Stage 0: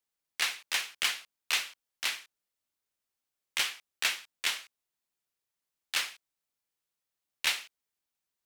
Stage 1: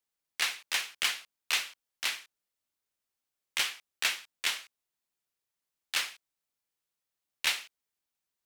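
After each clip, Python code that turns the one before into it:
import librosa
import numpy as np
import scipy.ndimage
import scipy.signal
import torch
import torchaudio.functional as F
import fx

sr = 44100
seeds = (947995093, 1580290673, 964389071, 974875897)

y = x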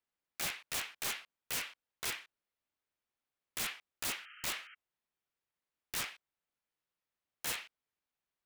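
y = fx.bass_treble(x, sr, bass_db=0, treble_db=-12)
y = (np.mod(10.0 ** (30.0 / 20.0) * y + 1.0, 2.0) - 1.0) / 10.0 ** (30.0 / 20.0)
y = fx.spec_paint(y, sr, seeds[0], shape='noise', start_s=4.18, length_s=0.57, low_hz=1200.0, high_hz=3200.0, level_db=-55.0)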